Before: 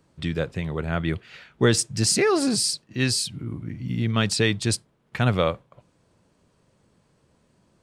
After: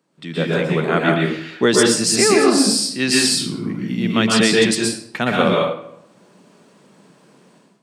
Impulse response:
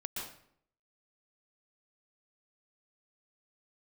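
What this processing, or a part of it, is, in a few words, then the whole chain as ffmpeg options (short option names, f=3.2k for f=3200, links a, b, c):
far laptop microphone: -filter_complex "[1:a]atrim=start_sample=2205[a];[0:a][a]afir=irnorm=-1:irlink=0,highpass=f=180:w=0.5412,highpass=f=180:w=1.3066,dynaudnorm=f=270:g=3:m=15dB,volume=-1dB"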